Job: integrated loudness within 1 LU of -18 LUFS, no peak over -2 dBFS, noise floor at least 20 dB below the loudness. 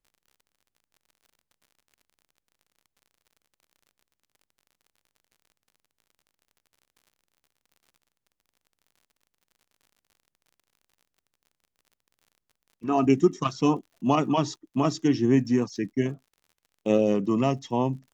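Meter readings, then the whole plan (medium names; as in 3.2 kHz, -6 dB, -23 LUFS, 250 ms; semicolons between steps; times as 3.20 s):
tick rate 50 per s; loudness -25.0 LUFS; peak level -8.0 dBFS; loudness target -18.0 LUFS
-> de-click; trim +7 dB; peak limiter -2 dBFS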